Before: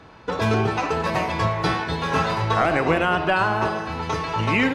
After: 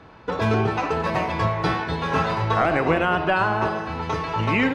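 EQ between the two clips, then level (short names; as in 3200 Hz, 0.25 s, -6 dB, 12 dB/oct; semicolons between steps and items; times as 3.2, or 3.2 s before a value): high shelf 5100 Hz -9.5 dB; 0.0 dB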